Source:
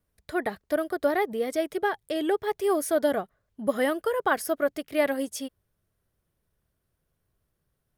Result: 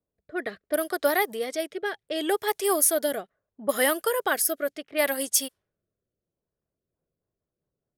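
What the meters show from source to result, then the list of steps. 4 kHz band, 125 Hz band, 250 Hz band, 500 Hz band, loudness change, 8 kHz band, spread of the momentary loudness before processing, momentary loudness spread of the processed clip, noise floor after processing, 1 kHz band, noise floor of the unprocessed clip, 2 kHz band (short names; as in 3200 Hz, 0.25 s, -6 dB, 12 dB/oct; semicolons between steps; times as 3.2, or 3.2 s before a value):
+7.0 dB, n/a, -3.5 dB, -1.0 dB, +1.5 dB, +13.0 dB, 7 LU, 12 LU, under -85 dBFS, 0.0 dB, -78 dBFS, +2.5 dB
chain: rotary speaker horn 0.7 Hz, later 5 Hz, at 6.38; RIAA curve recording; low-pass opened by the level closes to 590 Hz, open at -26 dBFS; gain +3.5 dB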